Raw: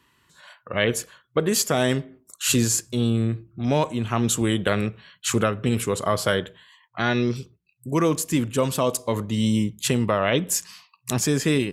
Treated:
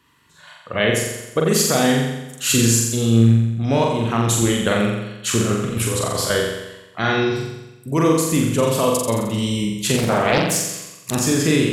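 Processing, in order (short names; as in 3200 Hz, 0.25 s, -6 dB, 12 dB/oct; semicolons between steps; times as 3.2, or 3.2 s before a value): 5.39–6.3 negative-ratio compressor -25 dBFS, ratio -0.5; on a send: flutter echo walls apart 7.5 m, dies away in 1 s; 9.97–11.13 on the sum: Doppler distortion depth 0.79 ms; gain +1.5 dB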